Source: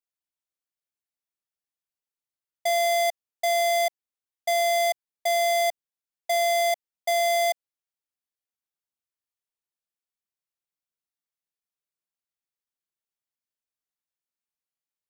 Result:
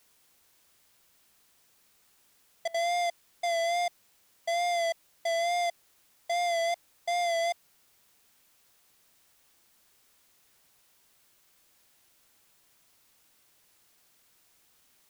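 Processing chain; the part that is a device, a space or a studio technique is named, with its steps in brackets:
worn cassette (low-pass filter 7,400 Hz 12 dB per octave; tape wow and flutter; tape dropouts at 0:02.68, 61 ms −21 dB; white noise bed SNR 30 dB)
level −5.5 dB

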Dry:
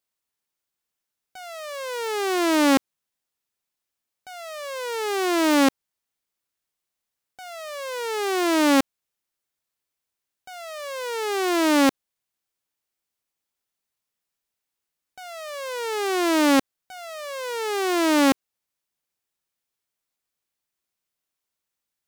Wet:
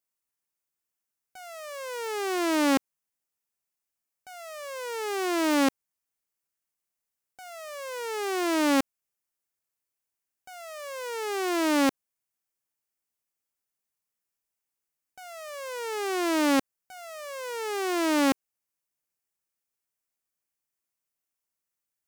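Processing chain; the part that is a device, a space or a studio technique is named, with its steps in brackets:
exciter from parts (in parallel at −4.5 dB: high-pass filter 3,500 Hz 24 dB per octave + soft clipping −35 dBFS, distortion −3 dB)
on the sum: level −5 dB

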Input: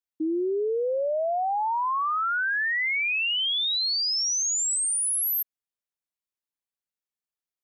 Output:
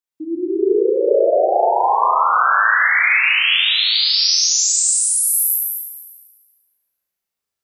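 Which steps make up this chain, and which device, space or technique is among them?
tunnel (flutter between parallel walls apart 6.2 metres, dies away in 0.76 s; convolution reverb RT60 2.6 s, pre-delay 113 ms, DRR −7 dB)

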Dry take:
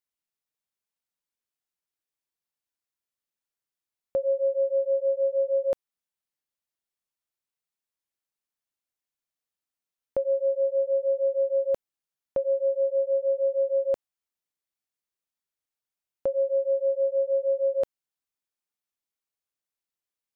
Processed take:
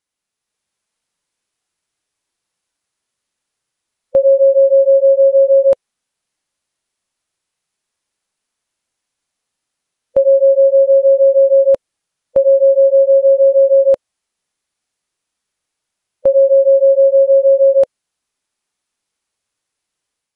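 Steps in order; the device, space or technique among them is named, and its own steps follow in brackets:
0:13.52–0:13.93: high-pass filter 110 Hz 24 dB per octave
harmonic and percussive parts rebalanced harmonic +6 dB
0:16.27–0:17.04: low-shelf EQ 190 Hz +4.5 dB
low-bitrate web radio (automatic gain control gain up to 5 dB; brickwall limiter −11 dBFS, peak gain reduction 4 dB; level +7 dB; MP3 48 kbit/s 48,000 Hz)

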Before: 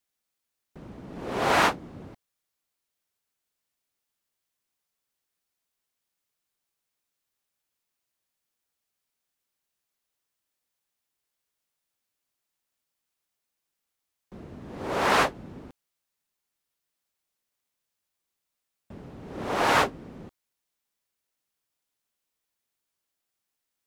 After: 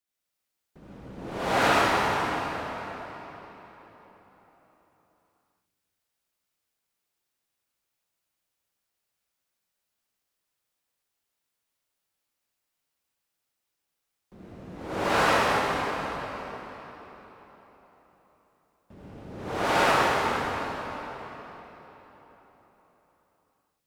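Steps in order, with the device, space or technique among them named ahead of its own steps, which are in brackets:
cathedral (convolution reverb RT60 4.3 s, pre-delay 61 ms, DRR −8.5 dB)
level −6.5 dB

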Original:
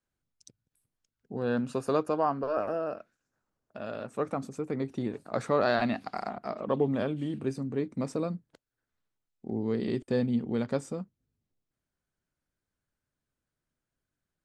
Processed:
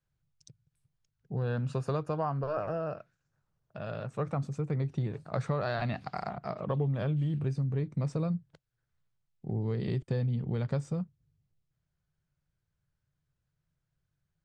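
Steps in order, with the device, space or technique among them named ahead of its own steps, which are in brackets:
jukebox (low-pass filter 6,700 Hz 12 dB per octave; low shelf with overshoot 190 Hz +7.5 dB, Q 3; downward compressor 5 to 1, threshold −26 dBFS, peak gain reduction 7 dB)
level −1 dB

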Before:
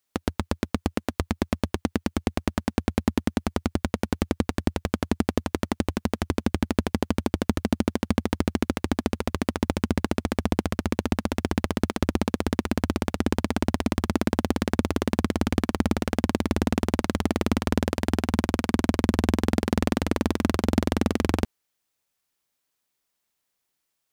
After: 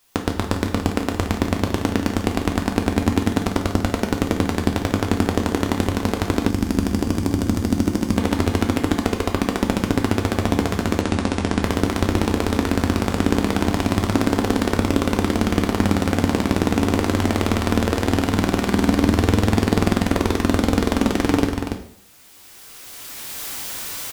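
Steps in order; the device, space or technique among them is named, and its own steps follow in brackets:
loudspeakers that aren't time-aligned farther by 50 metres −11 dB, 98 metres −10 dB
cheap recorder with automatic gain (white noise bed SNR 40 dB; camcorder AGC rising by 15 dB per second)
coupled-rooms reverb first 0.56 s, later 1.8 s, from −26 dB, DRR 3 dB
0:06.49–0:08.18: gain on a spectral selection 370–4,500 Hz −6 dB
0:11.01–0:11.63: elliptic low-pass filter 10,000 Hz, stop band 50 dB
level +3.5 dB

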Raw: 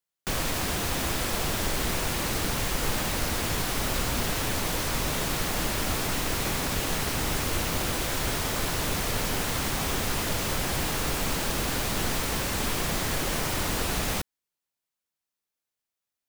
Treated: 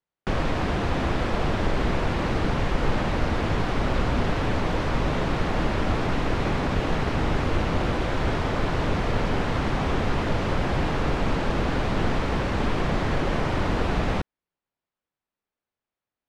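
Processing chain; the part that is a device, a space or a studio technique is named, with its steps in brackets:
phone in a pocket (low-pass filter 3,800 Hz 12 dB per octave; high-shelf EQ 2,000 Hz −11.5 dB)
level +6.5 dB

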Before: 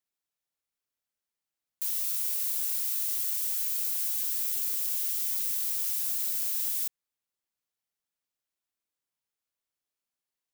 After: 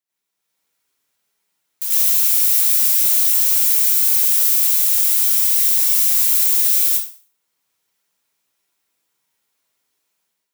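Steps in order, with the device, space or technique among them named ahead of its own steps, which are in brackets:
far laptop microphone (convolution reverb RT60 0.45 s, pre-delay 82 ms, DRR −8.5 dB; high-pass filter 130 Hz 6 dB per octave; automatic gain control gain up to 9 dB)

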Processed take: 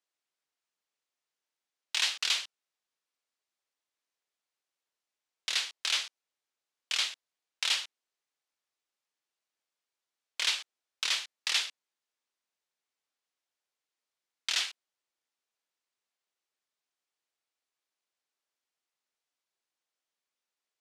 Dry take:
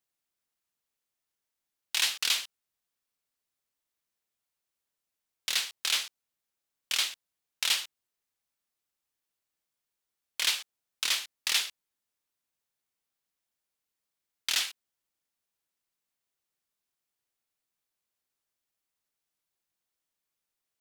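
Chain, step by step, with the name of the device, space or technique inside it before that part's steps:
public-address speaker with an overloaded transformer (saturating transformer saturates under 3,600 Hz; band-pass filter 330–7,000 Hz)

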